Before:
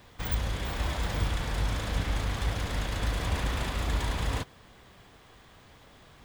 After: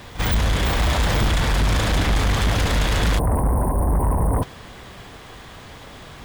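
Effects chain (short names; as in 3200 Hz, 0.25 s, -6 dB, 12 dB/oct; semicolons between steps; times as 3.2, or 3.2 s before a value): spectral delete 3.19–4.43, 1100–8500 Hz; pre-echo 45 ms -18 dB; sine folder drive 9 dB, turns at -16 dBFS; gain +1.5 dB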